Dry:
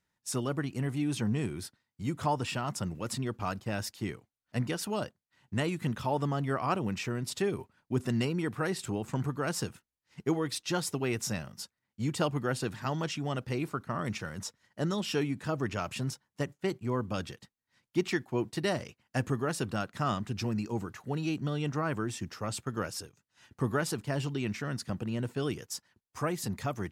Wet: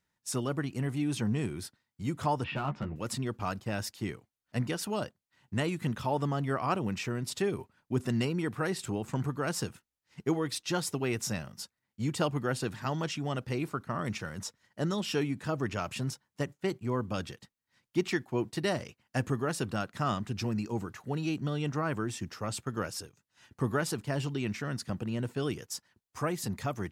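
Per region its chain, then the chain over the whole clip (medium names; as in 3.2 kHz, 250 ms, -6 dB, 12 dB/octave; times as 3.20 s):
2.44–2.96 s: low-pass 2.9 kHz 24 dB/octave + hard clipper -26.5 dBFS + doubling 14 ms -5 dB
whole clip: none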